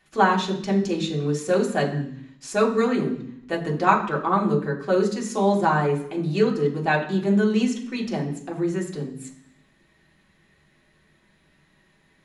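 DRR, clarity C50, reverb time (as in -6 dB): -2.5 dB, 9.5 dB, 0.65 s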